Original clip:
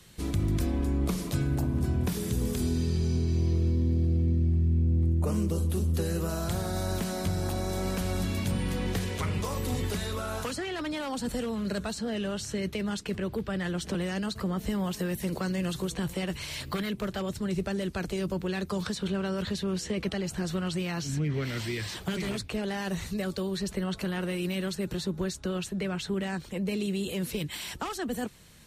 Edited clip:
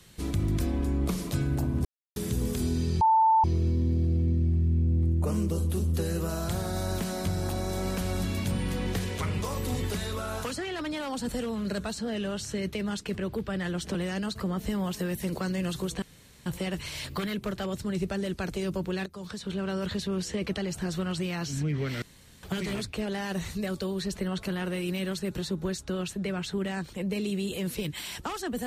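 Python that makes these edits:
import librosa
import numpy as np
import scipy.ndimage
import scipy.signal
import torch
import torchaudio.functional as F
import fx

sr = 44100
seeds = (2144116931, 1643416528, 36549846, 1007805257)

y = fx.edit(x, sr, fx.silence(start_s=1.85, length_s=0.31),
    fx.bleep(start_s=3.01, length_s=0.43, hz=888.0, db=-17.5),
    fx.insert_room_tone(at_s=16.02, length_s=0.44),
    fx.fade_in_from(start_s=18.62, length_s=0.67, floor_db=-15.5),
    fx.room_tone_fill(start_s=21.58, length_s=0.41), tone=tone)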